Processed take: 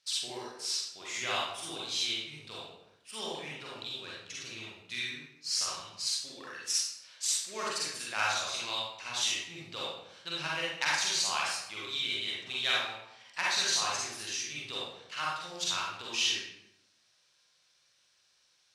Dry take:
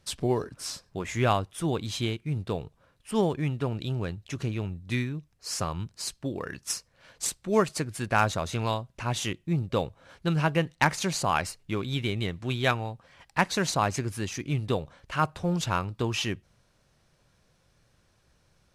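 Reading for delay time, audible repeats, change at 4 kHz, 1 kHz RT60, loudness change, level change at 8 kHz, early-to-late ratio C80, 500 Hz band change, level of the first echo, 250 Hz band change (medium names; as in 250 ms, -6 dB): no echo, no echo, +5.0 dB, 0.80 s, -3.0 dB, +2.5 dB, 2.5 dB, -13.0 dB, no echo, -19.0 dB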